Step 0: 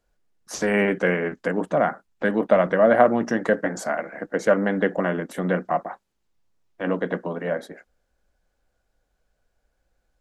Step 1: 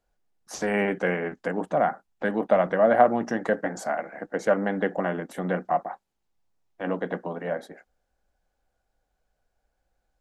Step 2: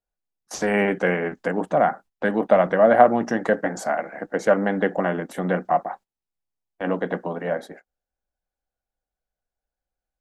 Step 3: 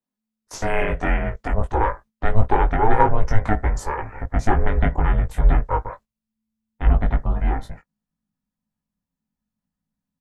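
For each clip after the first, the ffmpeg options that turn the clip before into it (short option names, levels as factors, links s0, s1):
-af "equalizer=f=780:t=o:w=0.38:g=6.5,volume=0.596"
-af "agate=range=0.141:threshold=0.00501:ratio=16:detection=peak,volume=1.58"
-filter_complex "[0:a]aeval=exprs='val(0)*sin(2*PI*220*n/s)':c=same,asubboost=boost=10.5:cutoff=110,asplit=2[s0][s1];[s1]adelay=19,volume=0.631[s2];[s0][s2]amix=inputs=2:normalize=0"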